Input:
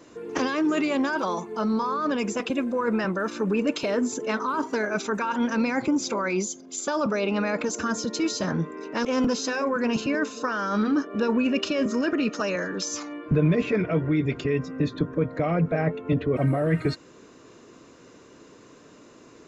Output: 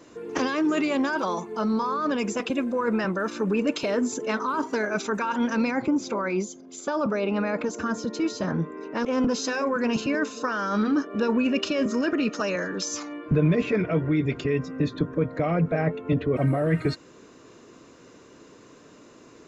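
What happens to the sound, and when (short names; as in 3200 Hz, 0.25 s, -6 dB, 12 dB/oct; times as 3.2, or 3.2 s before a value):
5.71–9.34 high shelf 3200 Hz -10 dB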